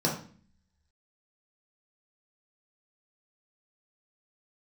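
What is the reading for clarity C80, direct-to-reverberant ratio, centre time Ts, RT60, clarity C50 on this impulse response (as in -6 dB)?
11.0 dB, -3.5 dB, 28 ms, 0.45 s, 6.5 dB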